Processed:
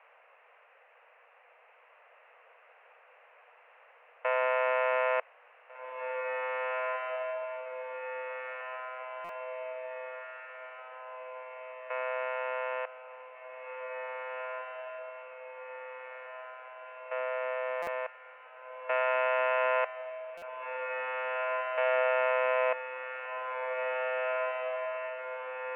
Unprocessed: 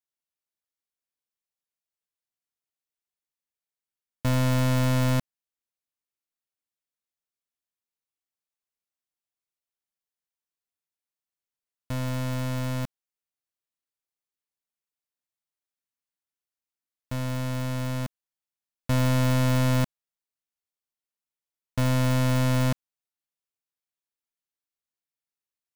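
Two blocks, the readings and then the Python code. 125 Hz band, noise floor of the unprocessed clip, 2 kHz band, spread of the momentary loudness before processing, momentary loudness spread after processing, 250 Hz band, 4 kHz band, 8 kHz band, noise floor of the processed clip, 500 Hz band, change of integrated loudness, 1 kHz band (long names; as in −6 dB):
below −40 dB, below −85 dBFS, +5.5 dB, 11 LU, 17 LU, below −35 dB, −10.0 dB, below −30 dB, −61 dBFS, +5.5 dB, −7.5 dB, +5.0 dB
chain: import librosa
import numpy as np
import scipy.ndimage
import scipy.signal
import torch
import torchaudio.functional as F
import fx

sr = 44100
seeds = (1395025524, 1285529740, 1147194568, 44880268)

y = fx.dmg_noise_colour(x, sr, seeds[0], colour='pink', level_db=-58.0)
y = scipy.signal.sosfilt(scipy.signal.cheby1(5, 1.0, [480.0, 2700.0], 'bandpass', fs=sr, output='sos'), y)
y = fx.echo_diffused(y, sr, ms=1962, feedback_pct=62, wet_db=-4)
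y = fx.buffer_glitch(y, sr, at_s=(9.24, 17.82, 20.37), block=256, repeats=8)
y = y * 10.0 ** (4.0 / 20.0)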